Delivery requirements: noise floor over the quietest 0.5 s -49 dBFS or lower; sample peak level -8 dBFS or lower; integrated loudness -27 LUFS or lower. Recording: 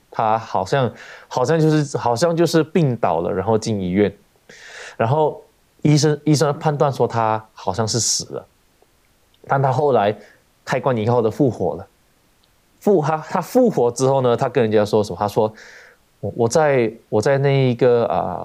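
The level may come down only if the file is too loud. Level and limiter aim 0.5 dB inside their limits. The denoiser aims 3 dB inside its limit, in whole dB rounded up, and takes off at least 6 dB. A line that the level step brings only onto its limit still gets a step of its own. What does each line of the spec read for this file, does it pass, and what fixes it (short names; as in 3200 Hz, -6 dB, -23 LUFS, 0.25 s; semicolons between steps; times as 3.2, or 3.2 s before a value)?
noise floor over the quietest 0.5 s -58 dBFS: OK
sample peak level -4.0 dBFS: fail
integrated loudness -18.5 LUFS: fail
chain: gain -9 dB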